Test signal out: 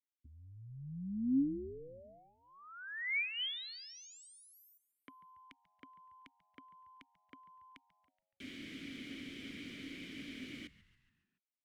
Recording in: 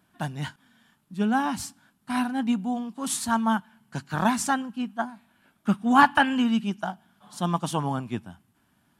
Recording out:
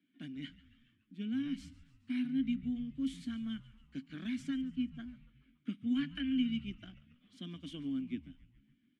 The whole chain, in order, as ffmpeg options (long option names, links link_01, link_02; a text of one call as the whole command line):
ffmpeg -i in.wav -filter_complex "[0:a]acrossover=split=170|1700[link_01][link_02][link_03];[link_01]acompressor=threshold=-30dB:ratio=4[link_04];[link_02]acompressor=threshold=-30dB:ratio=4[link_05];[link_03]acompressor=threshold=-30dB:ratio=4[link_06];[link_04][link_05][link_06]amix=inputs=3:normalize=0,asplit=3[link_07][link_08][link_09];[link_07]bandpass=frequency=270:width_type=q:width=8,volume=0dB[link_10];[link_08]bandpass=frequency=2290:width_type=q:width=8,volume=-6dB[link_11];[link_09]bandpass=frequency=3010:width_type=q:width=8,volume=-9dB[link_12];[link_10][link_11][link_12]amix=inputs=3:normalize=0,asplit=6[link_13][link_14][link_15][link_16][link_17][link_18];[link_14]adelay=141,afreqshift=-96,volume=-19dB[link_19];[link_15]adelay=282,afreqshift=-192,volume=-23.9dB[link_20];[link_16]adelay=423,afreqshift=-288,volume=-28.8dB[link_21];[link_17]adelay=564,afreqshift=-384,volume=-33.6dB[link_22];[link_18]adelay=705,afreqshift=-480,volume=-38.5dB[link_23];[link_13][link_19][link_20][link_21][link_22][link_23]amix=inputs=6:normalize=0,volume=1dB" out.wav